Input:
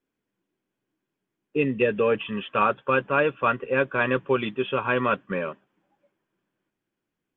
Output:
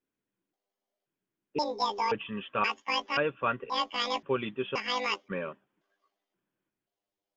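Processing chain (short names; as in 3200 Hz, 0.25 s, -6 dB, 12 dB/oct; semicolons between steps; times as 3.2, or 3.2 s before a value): trilling pitch shifter +12 st, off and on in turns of 0.528 s; gain -6.5 dB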